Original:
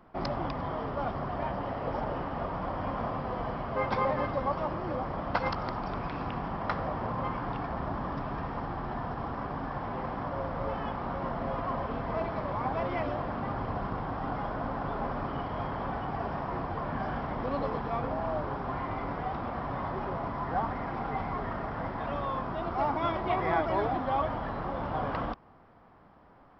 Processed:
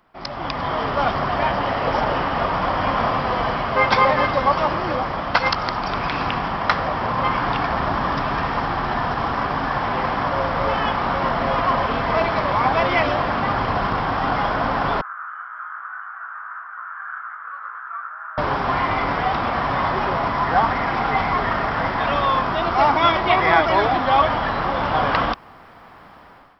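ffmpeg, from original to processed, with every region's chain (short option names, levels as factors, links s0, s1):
-filter_complex "[0:a]asettb=1/sr,asplit=3[s0][s1][s2];[s0]atrim=end=15.014[s3];[s1]atrim=start=15.01:end=18.38,asetpts=PTS-STARTPTS,afade=t=in:d=0.004:c=qsin,afade=t=out:st=3.366:d=0.004:c=qsin,asuperpass=centerf=1400:order=4:qfactor=3.8,flanger=delay=17.5:depth=2.2:speed=1.8[s4];[s2]atrim=start=18.376[s5];[s3][s4]acrossfade=d=0.004:c1=hsin:c2=qsin[s6];[s6][s5]acrossfade=d=0.004:c1=qsin:c2=hsin,tiltshelf=f=1200:g=-7.5,dynaudnorm=f=170:g=5:m=6.31"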